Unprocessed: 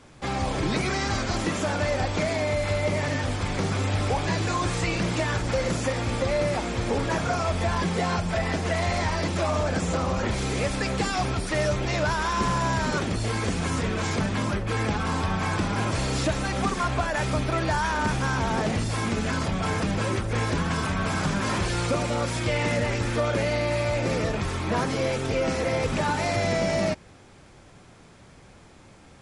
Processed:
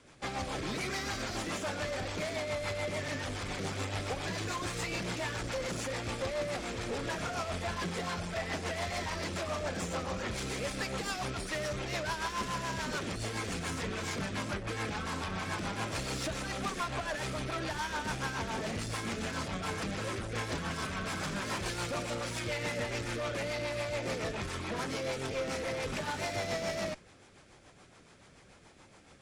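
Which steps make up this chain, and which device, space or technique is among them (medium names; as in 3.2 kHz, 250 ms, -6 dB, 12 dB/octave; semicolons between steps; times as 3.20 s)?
bass shelf 360 Hz -8 dB; overdriven rotary cabinet (valve stage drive 29 dB, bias 0.4; rotary cabinet horn 7 Hz)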